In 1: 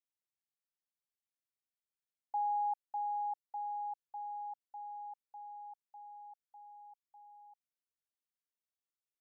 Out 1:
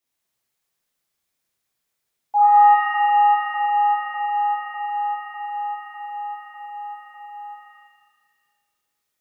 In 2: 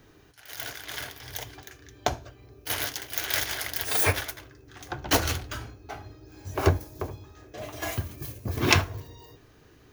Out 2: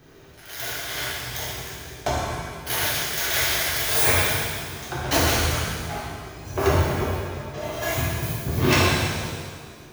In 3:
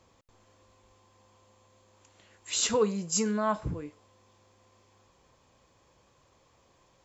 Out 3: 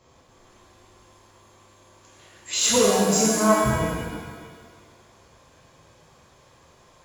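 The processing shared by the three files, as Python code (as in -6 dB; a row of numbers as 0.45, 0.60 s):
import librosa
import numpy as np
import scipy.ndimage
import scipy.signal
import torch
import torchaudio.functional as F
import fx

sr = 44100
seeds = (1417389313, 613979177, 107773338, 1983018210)

y = 10.0 ** (-18.5 / 20.0) * np.tanh(x / 10.0 ** (-18.5 / 20.0))
y = fx.rev_shimmer(y, sr, seeds[0], rt60_s=1.6, semitones=7, shimmer_db=-8, drr_db=-6.5)
y = librosa.util.normalize(y) * 10.0 ** (-6 / 20.0)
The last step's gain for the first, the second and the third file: +10.0, +0.5, +2.0 dB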